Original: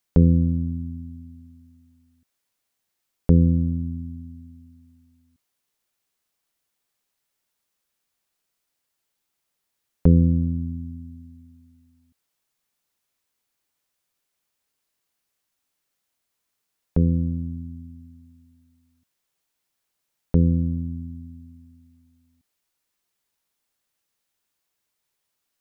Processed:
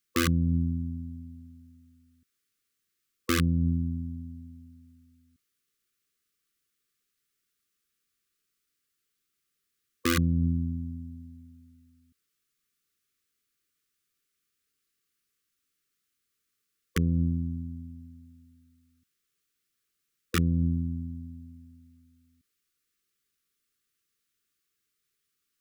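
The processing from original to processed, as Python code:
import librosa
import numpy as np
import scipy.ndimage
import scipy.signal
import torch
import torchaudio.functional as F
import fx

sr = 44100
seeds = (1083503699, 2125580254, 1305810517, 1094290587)

p1 = fx.over_compress(x, sr, threshold_db=-22.0, ratio=-0.5)
p2 = x + F.gain(torch.from_numpy(p1), -2.5).numpy()
p3 = (np.mod(10.0 ** (8.5 / 20.0) * p2 + 1.0, 2.0) - 1.0) / 10.0 ** (8.5 / 20.0)
p4 = fx.brickwall_bandstop(p3, sr, low_hz=500.0, high_hz=1100.0)
y = F.gain(torch.from_numpy(p4), -8.5).numpy()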